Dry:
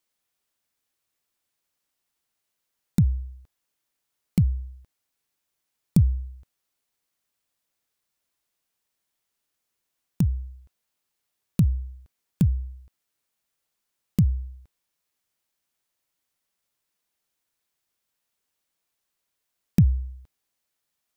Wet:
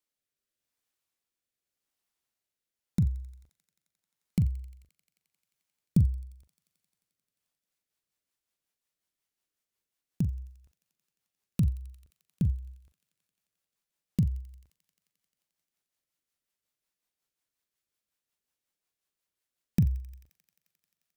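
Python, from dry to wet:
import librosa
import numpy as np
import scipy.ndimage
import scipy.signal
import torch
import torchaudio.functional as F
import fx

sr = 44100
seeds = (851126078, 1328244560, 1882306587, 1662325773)

p1 = fx.rotary_switch(x, sr, hz=0.85, then_hz=5.5, switch_at_s=7.04)
p2 = fx.doubler(p1, sr, ms=41.0, db=-13.0)
p3 = p2 + fx.echo_wet_highpass(p2, sr, ms=88, feedback_pct=83, hz=1600.0, wet_db=-18.5, dry=0)
y = p3 * 10.0 ** (-4.5 / 20.0)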